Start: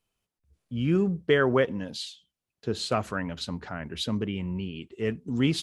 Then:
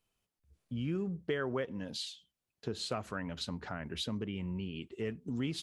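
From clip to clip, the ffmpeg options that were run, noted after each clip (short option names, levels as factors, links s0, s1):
-af "acompressor=threshold=0.0178:ratio=2.5,volume=0.841"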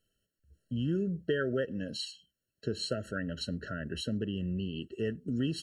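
-af "afftfilt=real='re*eq(mod(floor(b*sr/1024/650),2),0)':imag='im*eq(mod(floor(b*sr/1024/650),2),0)':win_size=1024:overlap=0.75,volume=1.58"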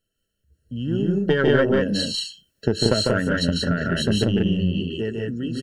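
-filter_complex "[0:a]dynaudnorm=f=240:g=9:m=3.55,aeval=exprs='0.422*(cos(1*acos(clip(val(0)/0.422,-1,1)))-cos(1*PI/2))+0.119*(cos(2*acos(clip(val(0)/0.422,-1,1)))-cos(2*PI/2))+0.00596*(cos(8*acos(clip(val(0)/0.422,-1,1)))-cos(8*PI/2))':c=same,asplit=2[s0][s1];[s1]aecho=0:1:148.7|183.7:0.708|0.794[s2];[s0][s2]amix=inputs=2:normalize=0"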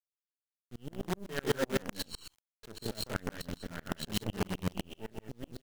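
-af "acrusher=bits=4:dc=4:mix=0:aa=0.000001,aeval=exprs='val(0)*pow(10,-34*if(lt(mod(-7.9*n/s,1),2*abs(-7.9)/1000),1-mod(-7.9*n/s,1)/(2*abs(-7.9)/1000),(mod(-7.9*n/s,1)-2*abs(-7.9)/1000)/(1-2*abs(-7.9)/1000))/20)':c=same,volume=0.473"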